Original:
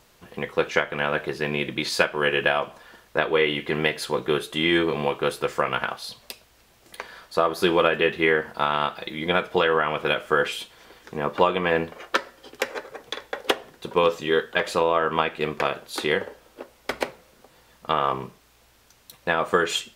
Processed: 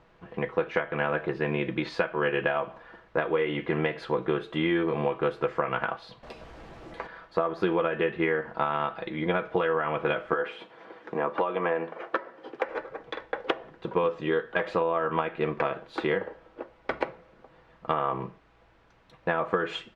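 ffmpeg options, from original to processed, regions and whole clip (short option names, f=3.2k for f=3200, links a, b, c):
-filter_complex "[0:a]asettb=1/sr,asplit=3[a][b][c];[a]atrim=end=6.234[d];[b]atrim=start=6.23:end=7.07,asetpts=PTS-STARTPTS,afade=t=in:d=0.004:c=qsin,afade=t=out:st=0.836:d=0.004:c=qsin,aeval=exprs='val(0)+0.5*0.0141*sgn(val(0))':c=same,equalizer=f=2.2k:t=o:w=2.1:g=-5,asplit=2[e][f];[f]adelay=13,volume=-10.5dB[g];[e][g]amix=inputs=2:normalize=0,atrim=end_sample=37044[h];[c]atrim=start=7.066[i];[d][h]acrossfade=d=0.004:c1=hsin:c2=qsin[j];[j][i]acrossfade=d=0.004:c1=qsin:c2=hsin,asettb=1/sr,asplit=3[k][l][m];[k]atrim=end=10.334[n];[l]atrim=start=10.33:end=12.69,asetpts=PTS-STARTPTS,afade=t=in:d=0.004:c=qsin,afade=t=out:st=2.356:d=0.004:c=qsin,highpass=180,equalizer=f=490:w=0.37:g=4.5,acrossover=split=580|2100[o][p][q];[o]acompressor=threshold=-31dB:ratio=4[r];[p]acompressor=threshold=-25dB:ratio=4[s];[q]acompressor=threshold=-38dB:ratio=4[t];[r][s][t]amix=inputs=3:normalize=0[u];[m]atrim=start=12.686[v];[n][u]acrossfade=d=0.004:c1=hsin:c2=qsin[w];[w][v]acrossfade=d=0.004:c1=qsin:c2=hsin,lowpass=1.9k,aecho=1:1:6.1:0.33,acompressor=threshold=-22dB:ratio=6"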